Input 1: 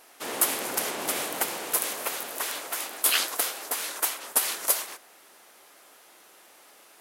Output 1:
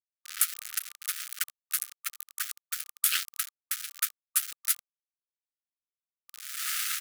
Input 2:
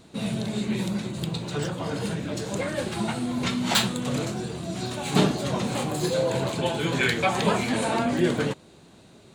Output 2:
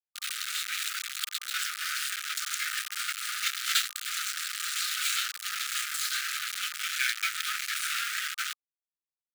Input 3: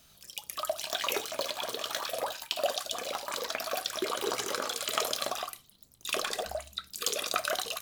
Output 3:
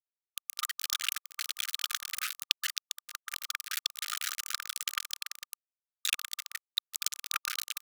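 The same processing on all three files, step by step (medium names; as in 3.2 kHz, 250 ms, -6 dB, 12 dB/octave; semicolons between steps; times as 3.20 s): recorder AGC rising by 15 dB/s; delay 287 ms -24 dB; small samples zeroed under -20.5 dBFS; brick-wall FIR high-pass 1.2 kHz; trim -2.5 dB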